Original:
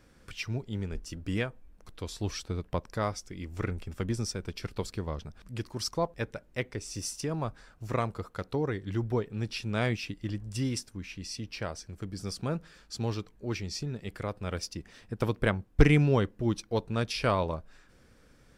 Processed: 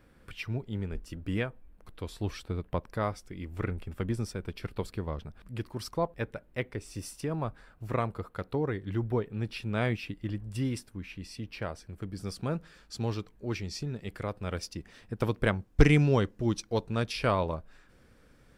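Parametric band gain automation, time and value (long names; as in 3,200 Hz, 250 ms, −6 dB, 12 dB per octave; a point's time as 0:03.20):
parametric band 6,100 Hz 1 octave
0:11.90 −11 dB
0:12.57 −3.5 dB
0:15.14 −3.5 dB
0:15.85 +3.5 dB
0:16.67 +3.5 dB
0:17.20 −5 dB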